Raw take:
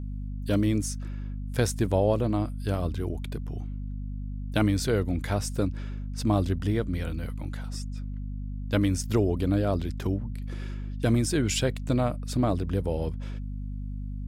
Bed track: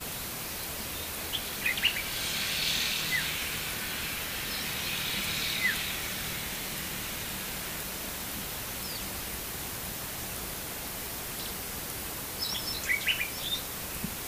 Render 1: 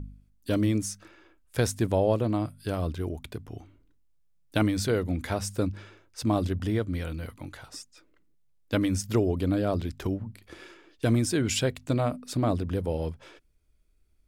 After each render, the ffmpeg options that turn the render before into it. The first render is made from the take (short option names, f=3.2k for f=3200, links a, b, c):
-af "bandreject=f=50:t=h:w=4,bandreject=f=100:t=h:w=4,bandreject=f=150:t=h:w=4,bandreject=f=200:t=h:w=4,bandreject=f=250:t=h:w=4"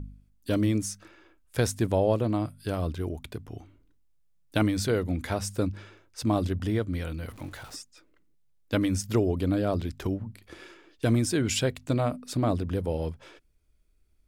-filter_complex "[0:a]asettb=1/sr,asplit=3[a][b][c];[a]atrim=end=7.284[d];[b]atrim=start=7.28:end=7.76,asetpts=PTS-STARTPTS,afade=t=in:d=0.004:c=qsin,afade=t=out:st=0.476:d=0.004:c=qsin,aeval=exprs='val(0)+0.5*0.00501*sgn(val(0))':c=same[e];[c]atrim=start=7.756[f];[d][e]acrossfade=d=0.004:c1=hsin:c2=qsin[g];[g][f]acrossfade=d=0.004:c1=qsin:c2=hsin"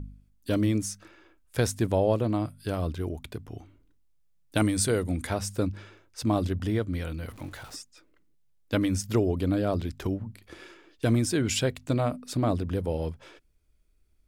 -filter_complex "[0:a]asettb=1/sr,asplit=3[a][b][c];[a]atrim=end=4.574[d];[b]atrim=start=4.57:end=5.27,asetpts=PTS-STARTPTS,afade=t=in:d=0.004:c=qsin,afade=t=out:st=0.696:d=0.004:c=qsin,equalizer=f=8.9k:t=o:w=0.51:g=14[e];[c]atrim=start=5.266[f];[d][e]acrossfade=d=0.004:c1=hsin:c2=qsin[g];[g][f]acrossfade=d=0.004:c1=qsin:c2=hsin"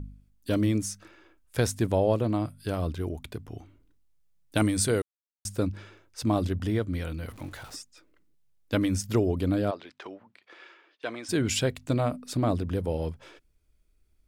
-filter_complex "[0:a]asplit=3[a][b][c];[a]afade=t=out:st=9.7:d=0.02[d];[b]highpass=650,lowpass=3.5k,afade=t=in:st=9.7:d=0.02,afade=t=out:st=11.28:d=0.02[e];[c]afade=t=in:st=11.28:d=0.02[f];[d][e][f]amix=inputs=3:normalize=0,asplit=3[g][h][i];[g]atrim=end=5.02,asetpts=PTS-STARTPTS,afade=t=out:st=5.016:d=0.004:c=hsin[j];[h]atrim=start=5.02:end=5.45,asetpts=PTS-STARTPTS,volume=0[k];[i]atrim=start=5.45,asetpts=PTS-STARTPTS,afade=t=in:d=0.004:c=hsin[l];[j][k][l]concat=n=3:v=0:a=1"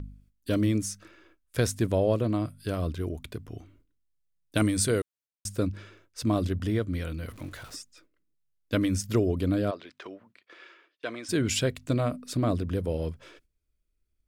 -af "agate=range=-10dB:threshold=-59dB:ratio=16:detection=peak,equalizer=f=830:t=o:w=0.27:g=-9.5"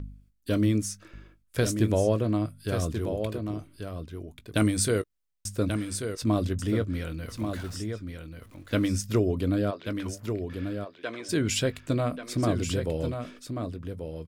-filter_complex "[0:a]asplit=2[a][b];[b]adelay=19,volume=-14dB[c];[a][c]amix=inputs=2:normalize=0,aecho=1:1:1136:0.447"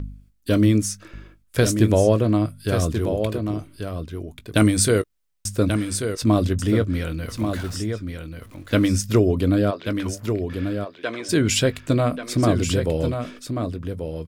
-af "volume=7dB"